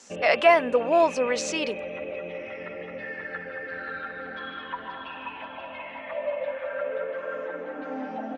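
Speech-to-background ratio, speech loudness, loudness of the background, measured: 12.0 dB, −22.5 LKFS, −34.5 LKFS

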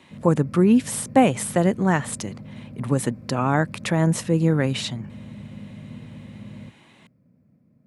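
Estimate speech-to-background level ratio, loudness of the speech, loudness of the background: 18.5 dB, −21.5 LKFS, −40.0 LKFS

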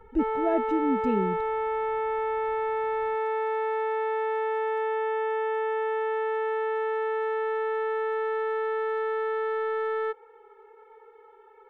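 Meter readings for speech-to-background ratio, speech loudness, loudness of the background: −0.5 dB, −29.0 LKFS, −28.5 LKFS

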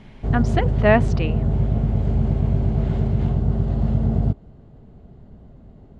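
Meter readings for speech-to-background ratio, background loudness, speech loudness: 0.0 dB, −22.0 LKFS, −22.0 LKFS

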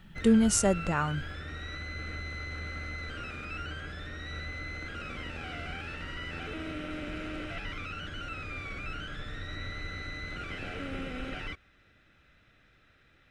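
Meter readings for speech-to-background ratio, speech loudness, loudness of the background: 12.5 dB, −26.0 LKFS, −38.5 LKFS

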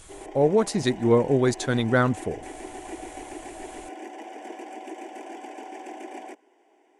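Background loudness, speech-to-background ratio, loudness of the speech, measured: −40.0 LKFS, 17.0 dB, −23.0 LKFS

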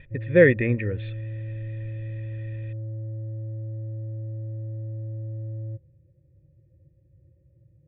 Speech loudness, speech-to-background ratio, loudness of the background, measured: −20.5 LKFS, 14.0 dB, −34.5 LKFS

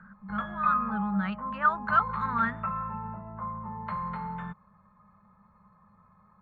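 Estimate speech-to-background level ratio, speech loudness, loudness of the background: 5.5 dB, −29.0 LKFS, −34.5 LKFS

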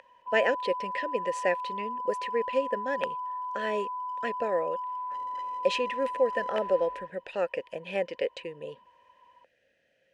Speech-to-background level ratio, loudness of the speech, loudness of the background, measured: 3.5 dB, −31.5 LKFS, −35.0 LKFS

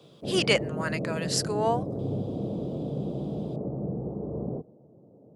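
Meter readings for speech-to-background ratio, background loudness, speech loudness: 5.0 dB, −33.0 LKFS, −28.0 LKFS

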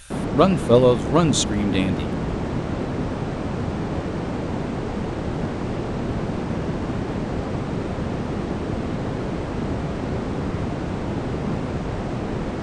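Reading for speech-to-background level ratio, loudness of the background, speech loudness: 7.0 dB, −26.5 LKFS, −19.5 LKFS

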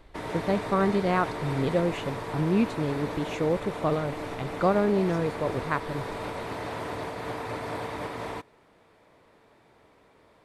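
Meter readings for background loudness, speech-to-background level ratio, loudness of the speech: −35.0 LKFS, 7.0 dB, −28.0 LKFS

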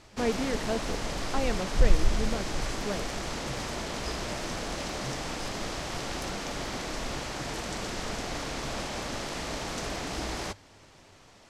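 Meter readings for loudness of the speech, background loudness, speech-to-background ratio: −35.0 LKFS, −33.5 LKFS, −1.5 dB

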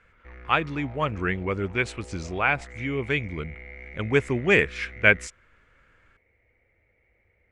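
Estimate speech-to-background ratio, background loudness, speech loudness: 18.5 dB, −43.5 LKFS, −25.0 LKFS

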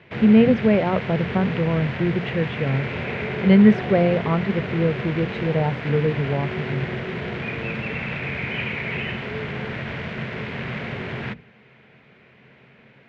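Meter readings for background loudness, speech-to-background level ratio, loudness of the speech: −28.5 LKFS, 7.5 dB, −21.0 LKFS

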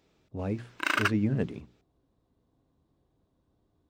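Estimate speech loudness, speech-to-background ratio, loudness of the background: −32.0 LKFS, −2.5 dB, −29.5 LKFS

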